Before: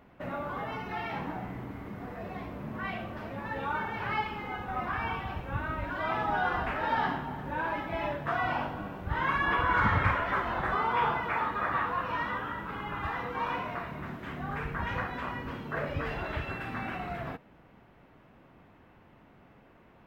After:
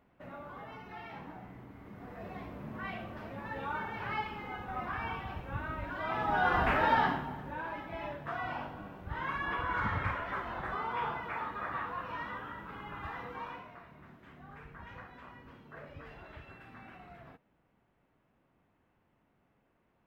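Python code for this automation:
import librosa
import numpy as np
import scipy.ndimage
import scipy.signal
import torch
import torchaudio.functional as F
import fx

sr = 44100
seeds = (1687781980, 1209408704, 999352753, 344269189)

y = fx.gain(x, sr, db=fx.line((1.73, -10.5), (2.25, -4.5), (6.07, -4.5), (6.74, 5.0), (7.62, -7.5), (13.32, -7.5), (13.72, -15.5)))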